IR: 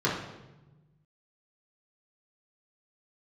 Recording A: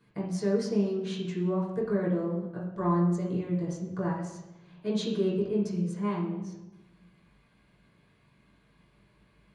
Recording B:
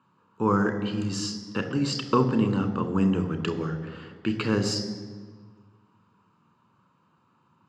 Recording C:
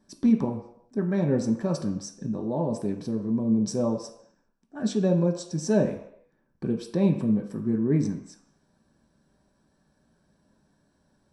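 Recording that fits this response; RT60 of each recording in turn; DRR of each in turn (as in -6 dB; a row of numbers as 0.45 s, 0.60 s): A; 1.1 s, 1.6 s, no single decay rate; -6.5 dB, 8.5 dB, 1.5 dB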